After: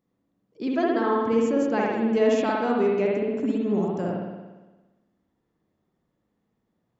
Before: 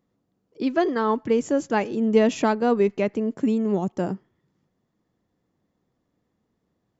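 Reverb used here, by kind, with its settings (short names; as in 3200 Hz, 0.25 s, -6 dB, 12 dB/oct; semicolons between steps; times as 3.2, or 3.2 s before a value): spring tank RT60 1.2 s, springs 57 ms, chirp 25 ms, DRR -3 dB; gain -5.5 dB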